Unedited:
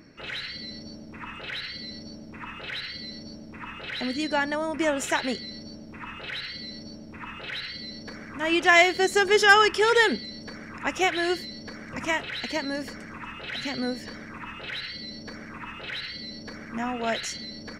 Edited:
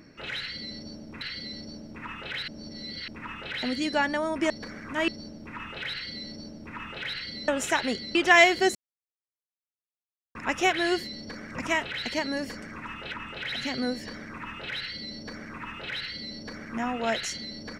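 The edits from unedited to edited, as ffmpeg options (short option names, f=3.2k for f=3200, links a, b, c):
-filter_complex "[0:a]asplit=12[a][b][c][d][e][f][g][h][i][j][k][l];[a]atrim=end=1.212[m];[b]atrim=start=1.588:end=2.862[n];[c]atrim=start=2.858:end=3.462,asetpts=PTS-STARTPTS,areverse[o];[d]atrim=start=3.458:end=4.882[p];[e]atrim=start=7.948:end=8.532[q];[f]atrim=start=5.548:end=7.952[r];[g]atrim=start=4.878:end=5.552[s];[h]atrim=start=8.528:end=9.13,asetpts=PTS-STARTPTS,afade=t=out:st=0.598:d=0.004:c=hsin[t];[i]atrim=start=9.13:end=10.73,asetpts=PTS-STARTPTS,volume=0[u];[j]atrim=start=10.73:end=13.522,asetpts=PTS-STARTPTS,afade=t=in:d=0.004:c=hsin[v];[k]atrim=start=1.208:end=1.592[w];[l]atrim=start=13.518[x];[m][n]acrossfade=d=0.004:c1=hsin:c2=hsin[y];[y][o]acrossfade=d=0.004:c1=hsin:c2=hsin[z];[z][p]acrossfade=d=0.004:c1=hsin:c2=hsin[aa];[aa][q]acrossfade=d=0.004:c1=hsin:c2=hsin[ab];[ab][r]acrossfade=d=0.004:c1=hsin:c2=hsin[ac];[ac][s]acrossfade=d=0.004:c1=hsin:c2=hsin[ad];[t][u][v]concat=n=3:v=0:a=1[ae];[ad][ae]acrossfade=d=0.004:c1=hsin:c2=hsin[af];[af][w]acrossfade=d=0.004:c1=hsin:c2=hsin[ag];[ag][x]acrossfade=d=0.004:c1=hsin:c2=hsin"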